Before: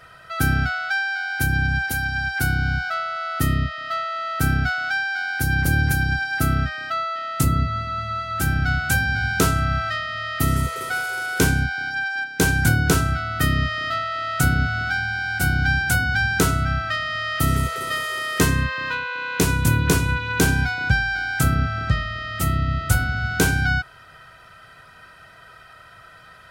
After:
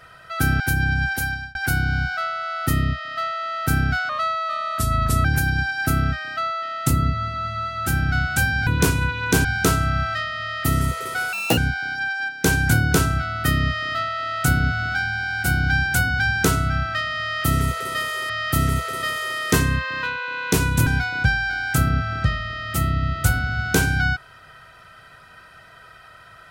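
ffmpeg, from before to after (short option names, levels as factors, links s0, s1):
-filter_complex "[0:a]asplit=11[s0][s1][s2][s3][s4][s5][s6][s7][s8][s9][s10];[s0]atrim=end=0.602[s11];[s1]atrim=start=1.328:end=2.28,asetpts=PTS-STARTPTS,afade=t=out:st=0.662:d=0.29[s12];[s2]atrim=start=2.28:end=4.824,asetpts=PTS-STARTPTS,afade=t=in:d=0.004:c=hsin[s13];[s3]atrim=start=4.82:end=5.78,asetpts=PTS-STARTPTS,asetrate=36603,aresample=44100,atrim=end_sample=51007,asetpts=PTS-STARTPTS[s14];[s4]atrim=start=5.776:end=9.202[s15];[s5]atrim=start=19.738:end=20.522[s16];[s6]atrim=start=9.198:end=11.084[s17];[s7]atrim=start=11.08:end=11.53,asetpts=PTS-STARTPTS,asetrate=79821,aresample=44100,atrim=end_sample=10964,asetpts=PTS-STARTPTS[s18];[s8]atrim=start=11.526:end=18.252[s19];[s9]atrim=start=17.168:end=19.742[s20];[s10]atrim=start=20.518[s21];[s12][s13]concat=n=2:v=0:a=1[s22];[s11][s22]acrossfade=d=0.004:c1=hsin:c2=hsin[s23];[s23][s14]acrossfade=d=0.004:c1=hsin:c2=hsin[s24];[s24][s15]acrossfade=d=0.004:c1=hsin:c2=hsin[s25];[s25][s16]acrossfade=d=0.004:c1=hsin:c2=hsin[s26];[s26][s17]acrossfade=d=0.004:c1=hsin:c2=hsin[s27];[s27][s18]acrossfade=d=0.004:c1=hsin:c2=hsin[s28];[s28][s19]acrossfade=d=0.004:c1=hsin:c2=hsin[s29];[s29][s20]acrossfade=d=0.004:c1=hsin:c2=hsin[s30];[s30][s21]acrossfade=d=0.004:c1=hsin:c2=hsin"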